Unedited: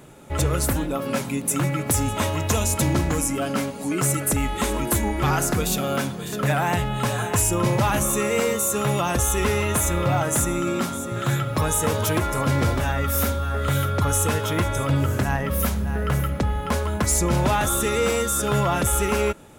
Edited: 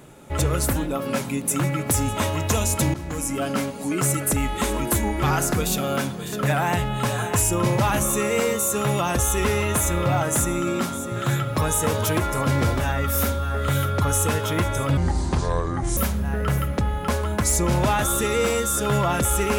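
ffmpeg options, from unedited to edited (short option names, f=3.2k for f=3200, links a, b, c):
-filter_complex "[0:a]asplit=4[a][b][c][d];[a]atrim=end=2.94,asetpts=PTS-STARTPTS,afade=t=out:st=2.936:d=0.004:c=hsin:silence=0.149624[e];[b]atrim=start=2.94:end=14.974,asetpts=PTS-STARTPTS,afade=t=in:d=0.47:silence=0.149624[f];[c]atrim=start=14.97:end=15.59,asetpts=PTS-STARTPTS,asetrate=27342,aresample=44100[g];[d]atrim=start=15.586[h];[e][f]concat=n=2:v=0:a=1[i];[i][g]acrossfade=d=0.004:c1=hsin:c2=hsin[j];[j][h]acrossfade=d=0.004:c1=hsin:c2=hsin"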